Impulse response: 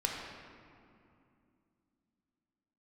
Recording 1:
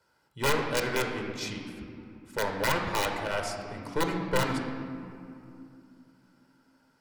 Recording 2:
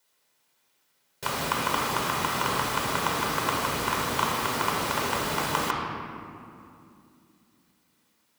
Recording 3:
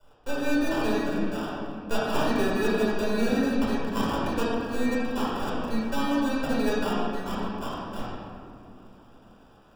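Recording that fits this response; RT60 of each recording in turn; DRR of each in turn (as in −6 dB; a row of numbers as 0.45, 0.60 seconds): 2; 2.6, 2.6, 2.6 seconds; 2.5, −1.5, −8.0 decibels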